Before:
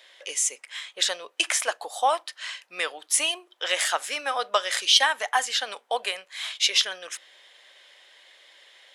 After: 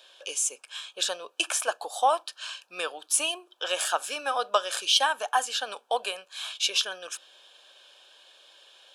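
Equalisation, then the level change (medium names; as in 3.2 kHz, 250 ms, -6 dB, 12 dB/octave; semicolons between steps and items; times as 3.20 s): dynamic bell 4.5 kHz, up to -5 dB, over -35 dBFS, Q 0.79; Butterworth band-stop 2 kHz, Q 3; 0.0 dB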